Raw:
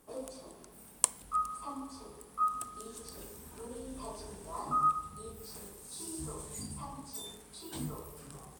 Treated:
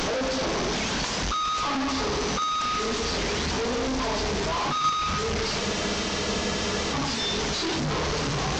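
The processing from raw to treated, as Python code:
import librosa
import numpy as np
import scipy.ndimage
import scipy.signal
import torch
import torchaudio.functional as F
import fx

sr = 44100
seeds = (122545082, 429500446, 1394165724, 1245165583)

y = fx.delta_mod(x, sr, bps=32000, step_db=-23.0)
y = fx.spec_freeze(y, sr, seeds[0], at_s=5.62, hold_s=1.32)
y = y * 10.0 ** (3.0 / 20.0)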